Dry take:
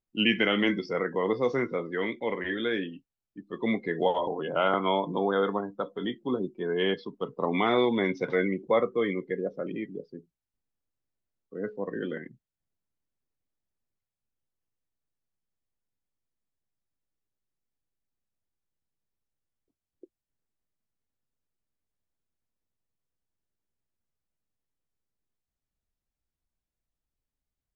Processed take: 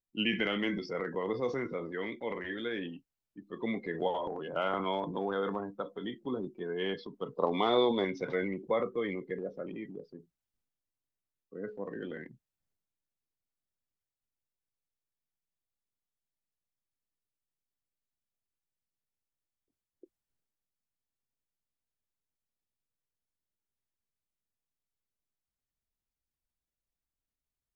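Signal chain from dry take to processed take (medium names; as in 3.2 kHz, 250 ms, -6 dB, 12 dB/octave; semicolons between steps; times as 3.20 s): transient shaper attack +3 dB, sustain +7 dB; 7.35–8.05 s: graphic EQ 500/1000/2000/4000 Hz +6/+5/-7/+11 dB; trim -8 dB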